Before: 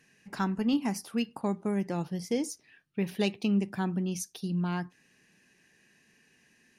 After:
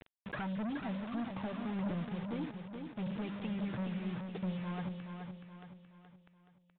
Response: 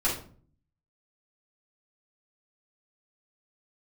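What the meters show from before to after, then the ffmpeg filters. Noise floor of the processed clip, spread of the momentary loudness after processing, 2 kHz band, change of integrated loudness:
-70 dBFS, 11 LU, -5.5 dB, -8.0 dB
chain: -filter_complex "[0:a]acrossover=split=2900[a][b];[b]acompressor=threshold=-58dB:ratio=4:attack=1:release=60[c];[a][c]amix=inputs=2:normalize=0,highpass=65,aemphasis=mode=reproduction:type=bsi,bandreject=f=50:t=h:w=6,bandreject=f=100:t=h:w=6,bandreject=f=150:t=h:w=6,bandreject=f=200:t=h:w=6,bandreject=f=250:t=h:w=6,acompressor=threshold=-36dB:ratio=6,aphaser=in_gain=1:out_gain=1:delay=2:decay=0.71:speed=1.6:type=triangular,acrusher=bits=7:mix=0:aa=0.000001,asoftclip=type=hard:threshold=-38dB,aecho=1:1:424|848|1272|1696|2120:0.501|0.226|0.101|0.0457|0.0206,aresample=8000,aresample=44100,volume=2.5dB"

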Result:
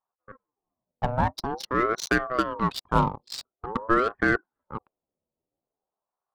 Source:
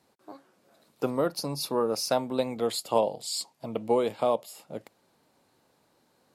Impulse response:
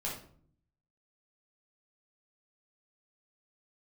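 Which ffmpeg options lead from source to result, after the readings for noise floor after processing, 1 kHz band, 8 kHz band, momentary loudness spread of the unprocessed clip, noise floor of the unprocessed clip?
under -85 dBFS, +6.5 dB, -5.5 dB, 10 LU, -69 dBFS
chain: -af "adynamicsmooth=sensitivity=5.5:basefreq=1.5k,anlmdn=0.631,aeval=exprs='val(0)*sin(2*PI*650*n/s+650*0.45/0.47*sin(2*PI*0.47*n/s))':c=same,volume=5.5dB"

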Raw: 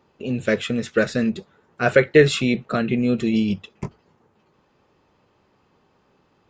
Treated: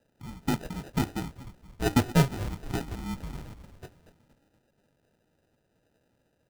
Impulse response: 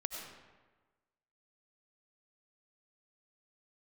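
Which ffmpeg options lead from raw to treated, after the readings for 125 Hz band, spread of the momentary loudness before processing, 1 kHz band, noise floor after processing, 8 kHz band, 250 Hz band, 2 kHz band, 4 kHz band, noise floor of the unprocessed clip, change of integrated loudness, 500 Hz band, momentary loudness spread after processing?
-3.0 dB, 16 LU, -4.5 dB, -73 dBFS, -3.5 dB, -9.5 dB, -15.0 dB, -9.5 dB, -63 dBFS, -9.5 dB, -17.0 dB, 23 LU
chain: -filter_complex "[0:a]highpass=f=420:t=q:w=0.5412,highpass=f=420:t=q:w=1.307,lowpass=f=2.8k:t=q:w=0.5176,lowpass=f=2.8k:t=q:w=0.7071,lowpass=f=2.8k:t=q:w=1.932,afreqshift=-290,bandreject=f=299:t=h:w=4,bandreject=f=598:t=h:w=4,bandreject=f=897:t=h:w=4,bandreject=f=1.196k:t=h:w=4,bandreject=f=1.495k:t=h:w=4,bandreject=f=1.794k:t=h:w=4,bandreject=f=2.093k:t=h:w=4,bandreject=f=2.392k:t=h:w=4,bandreject=f=2.691k:t=h:w=4,bandreject=f=2.99k:t=h:w=4,bandreject=f=3.289k:t=h:w=4,bandreject=f=3.588k:t=h:w=4,bandreject=f=3.887k:t=h:w=4,bandreject=f=4.186k:t=h:w=4,bandreject=f=4.485k:t=h:w=4,bandreject=f=4.784k:t=h:w=4,bandreject=f=5.083k:t=h:w=4,bandreject=f=5.382k:t=h:w=4,bandreject=f=5.681k:t=h:w=4,bandreject=f=5.98k:t=h:w=4,bandreject=f=6.279k:t=h:w=4,bandreject=f=6.578k:t=h:w=4,bandreject=f=6.877k:t=h:w=4,bandreject=f=7.176k:t=h:w=4,bandreject=f=7.475k:t=h:w=4,bandreject=f=7.774k:t=h:w=4,bandreject=f=8.073k:t=h:w=4,bandreject=f=8.372k:t=h:w=4,bandreject=f=8.671k:t=h:w=4,bandreject=f=8.97k:t=h:w=4,bandreject=f=9.269k:t=h:w=4,bandreject=f=9.568k:t=h:w=4,bandreject=f=9.867k:t=h:w=4,bandreject=f=10.166k:t=h:w=4,bandreject=f=10.465k:t=h:w=4,bandreject=f=10.764k:t=h:w=4,bandreject=f=11.063k:t=h:w=4,bandreject=f=11.362k:t=h:w=4,bandreject=f=11.661k:t=h:w=4,bandreject=f=11.96k:t=h:w=4,asplit=6[a][b][c][d][e][f];[b]adelay=236,afreqshift=-72,volume=-13.5dB[g];[c]adelay=472,afreqshift=-144,volume=-19.3dB[h];[d]adelay=708,afreqshift=-216,volume=-25.2dB[i];[e]adelay=944,afreqshift=-288,volume=-31dB[j];[f]adelay=1180,afreqshift=-360,volume=-36.9dB[k];[a][g][h][i][j][k]amix=inputs=6:normalize=0,acrusher=samples=40:mix=1:aa=0.000001,volume=-6dB"

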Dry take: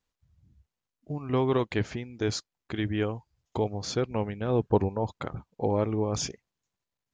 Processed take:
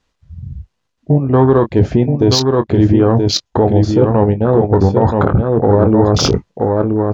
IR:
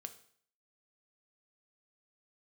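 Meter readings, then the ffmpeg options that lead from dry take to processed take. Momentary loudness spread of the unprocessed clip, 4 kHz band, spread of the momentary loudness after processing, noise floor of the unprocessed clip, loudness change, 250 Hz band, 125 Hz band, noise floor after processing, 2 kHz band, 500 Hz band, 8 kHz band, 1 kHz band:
12 LU, +18.0 dB, 5 LU, under -85 dBFS, +17.0 dB, +18.5 dB, +19.0 dB, -70 dBFS, +9.5 dB, +16.5 dB, +13.0 dB, +16.0 dB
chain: -filter_complex "[0:a]volume=15.5dB,asoftclip=hard,volume=-15.5dB,areverse,acompressor=threshold=-41dB:ratio=6,areverse,afwtdn=0.00447,highshelf=f=5.2k:g=7.5,bandreject=f=2.2k:w=25,asplit=2[a][b];[b]adelay=22,volume=-10.5dB[c];[a][c]amix=inputs=2:normalize=0,asplit=2[d][e];[e]aecho=0:1:976:0.562[f];[d][f]amix=inputs=2:normalize=0,adynamicsmooth=sensitivity=4:basefreq=4.9k,alimiter=level_in=34.5dB:limit=-1dB:release=50:level=0:latency=1,volume=-1dB"

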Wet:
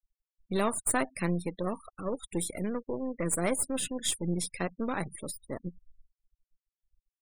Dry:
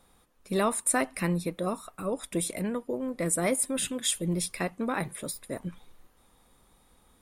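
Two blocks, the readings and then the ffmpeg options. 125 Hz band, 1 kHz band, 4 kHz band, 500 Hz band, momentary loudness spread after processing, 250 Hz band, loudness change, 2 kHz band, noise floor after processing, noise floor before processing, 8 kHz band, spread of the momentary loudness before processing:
-2.0 dB, -2.5 dB, -3.0 dB, -2.5 dB, 10 LU, -2.0 dB, -2.5 dB, -3.0 dB, under -85 dBFS, -64 dBFS, -3.0 dB, 10 LU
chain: -af "aeval=exprs='if(lt(val(0),0),0.447*val(0),val(0))':c=same,afftfilt=real='re*gte(hypot(re,im),0.01)':imag='im*gte(hypot(re,im),0.01)':win_size=1024:overlap=0.75"

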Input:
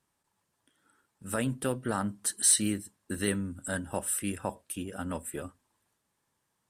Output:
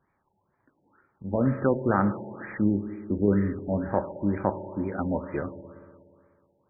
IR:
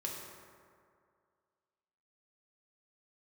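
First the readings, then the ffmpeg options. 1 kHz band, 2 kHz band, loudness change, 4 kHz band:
+7.5 dB, +0.5 dB, +3.0 dB, under -40 dB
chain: -filter_complex "[0:a]asplit=2[a][b];[1:a]atrim=start_sample=2205[c];[b][c]afir=irnorm=-1:irlink=0,volume=-6dB[d];[a][d]amix=inputs=2:normalize=0,afftfilt=real='re*lt(b*sr/1024,900*pow(2500/900,0.5+0.5*sin(2*PI*2.1*pts/sr)))':imag='im*lt(b*sr/1024,900*pow(2500/900,0.5+0.5*sin(2*PI*2.1*pts/sr)))':win_size=1024:overlap=0.75,volume=5dB"

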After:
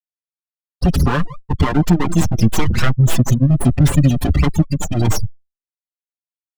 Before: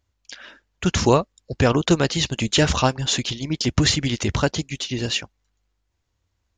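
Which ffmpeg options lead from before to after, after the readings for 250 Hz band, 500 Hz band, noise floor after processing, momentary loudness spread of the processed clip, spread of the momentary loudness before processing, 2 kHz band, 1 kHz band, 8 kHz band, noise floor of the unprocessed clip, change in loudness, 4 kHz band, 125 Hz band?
+6.0 dB, -3.0 dB, under -85 dBFS, 6 LU, 9 LU, -0.5 dB, +1.0 dB, -1.0 dB, -74 dBFS, +4.5 dB, -8.0 dB, +9.5 dB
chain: -filter_complex "[0:a]asplit=2[a][b];[b]aecho=0:1:177|354:0.1|0.025[c];[a][c]amix=inputs=2:normalize=0,acompressor=threshold=-19dB:ratio=12,afftfilt=real='re*gte(hypot(re,im),0.112)':imag='im*gte(hypot(re,im),0.112)':win_size=1024:overlap=0.75,acrossover=split=340[d][e];[e]aeval=exprs='abs(val(0))':c=same[f];[d][f]amix=inputs=2:normalize=0,lowshelf=f=290:g=6,asoftclip=type=tanh:threshold=-12dB,dynaudnorm=f=290:g=3:m=11.5dB,apsyclip=12.5dB,highshelf=f=4.7k:g=-4.5,bandreject=f=2.2k:w=17,asplit=2[g][h];[h]adelay=5.7,afreqshift=0.33[i];[g][i]amix=inputs=2:normalize=1,volume=-5.5dB"

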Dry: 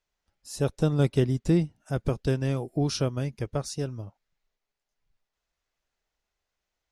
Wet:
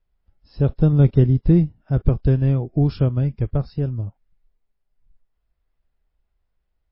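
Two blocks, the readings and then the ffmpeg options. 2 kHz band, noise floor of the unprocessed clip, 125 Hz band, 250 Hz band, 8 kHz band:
n/a, -85 dBFS, +10.5 dB, +7.0 dB, under -40 dB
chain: -af "aemphasis=mode=reproduction:type=riaa" -ar 12000 -c:a libmp3lame -b:a 24k

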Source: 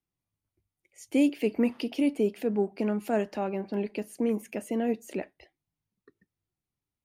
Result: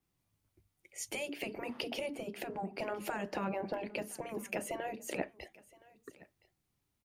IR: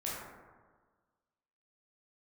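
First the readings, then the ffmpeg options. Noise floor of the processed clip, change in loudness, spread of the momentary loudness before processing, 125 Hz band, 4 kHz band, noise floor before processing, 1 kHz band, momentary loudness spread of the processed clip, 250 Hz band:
-82 dBFS, -10.0 dB, 8 LU, n/a, 0.0 dB, under -85 dBFS, -2.5 dB, 15 LU, -15.5 dB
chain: -filter_complex "[0:a]acompressor=threshold=-33dB:ratio=3,afftfilt=real='re*lt(hypot(re,im),0.0891)':imag='im*lt(hypot(re,im),0.0891)':win_size=1024:overlap=0.75,asplit=2[a][b];[b]aecho=0:1:1018:0.0668[c];[a][c]amix=inputs=2:normalize=0,adynamicequalizer=threshold=0.00112:dfrequency=2000:dqfactor=0.7:tfrequency=2000:tqfactor=0.7:attack=5:release=100:ratio=0.375:range=3:mode=cutabove:tftype=highshelf,volume=7.5dB"

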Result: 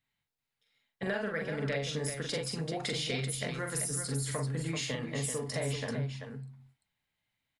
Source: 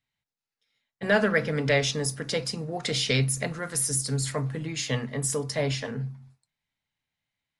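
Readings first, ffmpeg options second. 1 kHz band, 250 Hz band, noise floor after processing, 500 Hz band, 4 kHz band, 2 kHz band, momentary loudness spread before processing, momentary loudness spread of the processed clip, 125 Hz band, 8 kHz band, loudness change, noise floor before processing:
-7.0 dB, -6.5 dB, under -85 dBFS, -7.5 dB, -7.0 dB, -8.5 dB, 8 LU, 5 LU, -6.0 dB, -7.0 dB, -7.5 dB, under -85 dBFS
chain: -filter_complex "[0:a]equalizer=f=5.8k:t=o:w=0.53:g=-5,acompressor=threshold=-33dB:ratio=6,asplit=2[a][b];[b]aecho=0:1:43|387:0.631|0.447[c];[a][c]amix=inputs=2:normalize=0"

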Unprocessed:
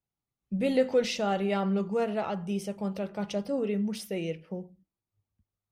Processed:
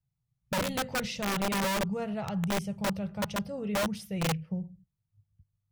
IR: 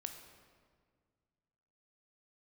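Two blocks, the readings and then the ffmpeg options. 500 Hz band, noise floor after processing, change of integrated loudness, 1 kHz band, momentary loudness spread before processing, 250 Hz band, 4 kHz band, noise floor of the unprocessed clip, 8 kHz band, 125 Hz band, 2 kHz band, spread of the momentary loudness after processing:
-5.5 dB, -83 dBFS, -1.5 dB, +1.5 dB, 9 LU, -2.0 dB, +3.5 dB, under -85 dBFS, +7.0 dB, +2.0 dB, +5.5 dB, 5 LU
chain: -af "lowshelf=f=200:t=q:w=3:g=13,aeval=exprs='(mod(10*val(0)+1,2)-1)/10':c=same,volume=-4.5dB"

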